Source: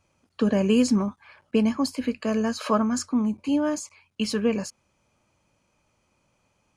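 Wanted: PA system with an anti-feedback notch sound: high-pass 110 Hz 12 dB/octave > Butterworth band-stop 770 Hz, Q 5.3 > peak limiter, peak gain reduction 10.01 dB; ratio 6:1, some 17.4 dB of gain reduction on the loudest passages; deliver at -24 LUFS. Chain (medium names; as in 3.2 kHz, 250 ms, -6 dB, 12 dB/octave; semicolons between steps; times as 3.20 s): compression 6:1, threshold -36 dBFS; high-pass 110 Hz 12 dB/octave; Butterworth band-stop 770 Hz, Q 5.3; trim +19 dB; peak limiter -15 dBFS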